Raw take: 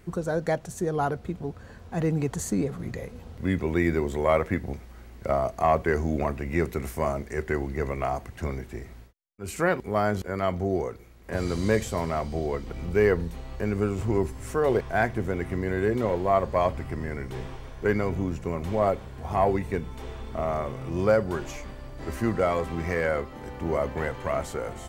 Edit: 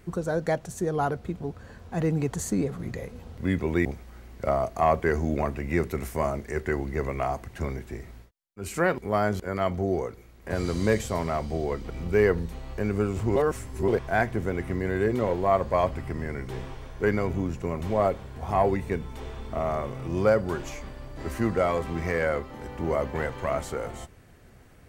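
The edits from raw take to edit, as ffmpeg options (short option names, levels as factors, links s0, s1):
-filter_complex "[0:a]asplit=4[s0][s1][s2][s3];[s0]atrim=end=3.852[s4];[s1]atrim=start=4.668:end=14.182[s5];[s2]atrim=start=14.178:end=14.702,asetpts=PTS-STARTPTS,areverse[s6];[s3]atrim=start=14.698[s7];[s4][s5]acrossfade=d=0.004:c1=hsin:c2=hsin[s8];[s8][s6]acrossfade=d=0.004:c1=hsin:c2=hsin[s9];[s9][s7]acrossfade=d=0.004:c1=hsin:c2=hsin"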